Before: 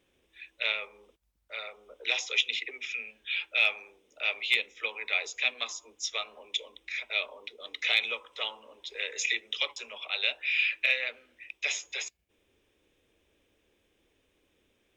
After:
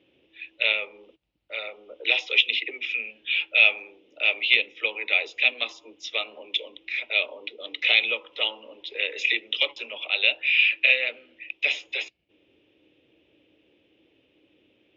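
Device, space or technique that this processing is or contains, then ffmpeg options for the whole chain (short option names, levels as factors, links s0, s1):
guitar cabinet: -af "highpass=100,equalizer=f=130:t=q:w=4:g=6,equalizer=f=310:t=q:w=4:g=10,equalizer=f=550:t=q:w=4:g=4,equalizer=f=1100:t=q:w=4:g=-6,equalizer=f=1600:t=q:w=4:g=-6,equalizer=f=2800:t=q:w=4:g=7,lowpass=f=4100:w=0.5412,lowpass=f=4100:w=1.3066,volume=1.68"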